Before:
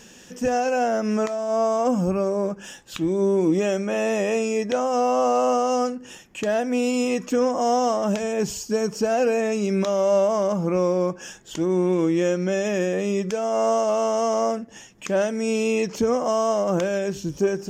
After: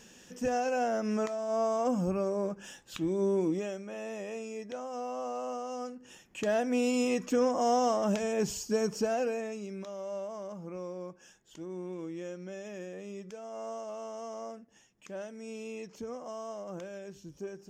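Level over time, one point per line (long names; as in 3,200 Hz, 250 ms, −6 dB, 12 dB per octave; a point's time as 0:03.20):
0:03.39 −8 dB
0:03.80 −16.5 dB
0:05.77 −16.5 dB
0:06.48 −6 dB
0:08.95 −6 dB
0:09.78 −19 dB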